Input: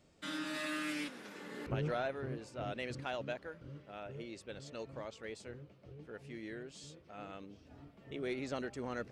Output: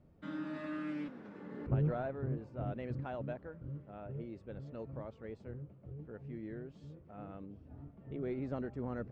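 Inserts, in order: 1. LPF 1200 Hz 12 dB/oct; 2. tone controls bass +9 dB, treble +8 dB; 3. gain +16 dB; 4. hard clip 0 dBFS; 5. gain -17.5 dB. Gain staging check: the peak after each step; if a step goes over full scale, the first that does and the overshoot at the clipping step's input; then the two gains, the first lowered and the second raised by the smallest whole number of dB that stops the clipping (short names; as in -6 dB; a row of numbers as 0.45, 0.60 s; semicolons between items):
-27.5, -20.0, -4.0, -4.0, -21.5 dBFS; no overload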